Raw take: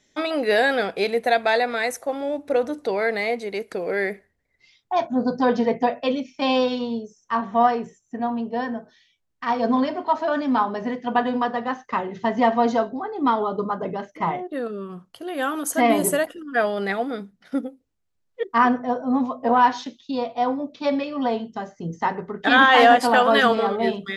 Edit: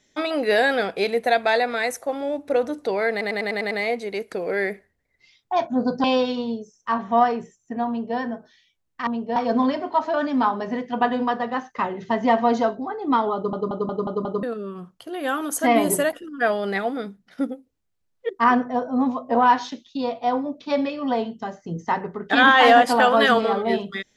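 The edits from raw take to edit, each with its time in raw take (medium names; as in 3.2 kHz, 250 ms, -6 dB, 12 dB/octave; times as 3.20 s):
3.11 s: stutter 0.10 s, 7 plays
5.44–6.47 s: delete
8.31–8.60 s: copy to 9.50 s
13.49 s: stutter in place 0.18 s, 6 plays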